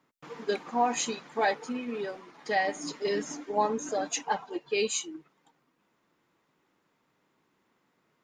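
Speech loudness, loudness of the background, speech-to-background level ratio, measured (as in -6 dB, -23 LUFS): -31.0 LUFS, -50.5 LUFS, 19.5 dB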